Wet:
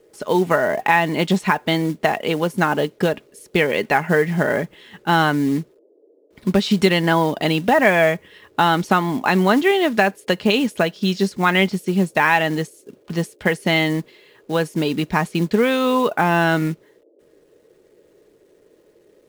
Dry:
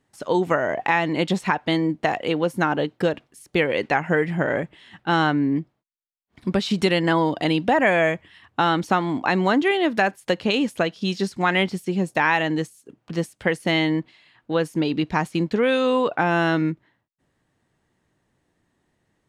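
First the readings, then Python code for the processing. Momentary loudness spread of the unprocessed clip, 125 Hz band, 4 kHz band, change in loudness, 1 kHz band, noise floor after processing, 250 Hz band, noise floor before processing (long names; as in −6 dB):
7 LU, +4.0 dB, +3.5 dB, +3.0 dB, +3.5 dB, −56 dBFS, +2.5 dB, −73 dBFS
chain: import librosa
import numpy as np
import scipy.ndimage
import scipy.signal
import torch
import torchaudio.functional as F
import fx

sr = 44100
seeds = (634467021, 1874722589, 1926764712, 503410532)

y = fx.quant_companded(x, sr, bits=6)
y = fx.dmg_noise_band(y, sr, seeds[0], low_hz=300.0, high_hz=550.0, level_db=-58.0)
y = y + 0.33 * np.pad(y, (int(4.8 * sr / 1000.0), 0))[:len(y)]
y = y * 10.0 ** (3.0 / 20.0)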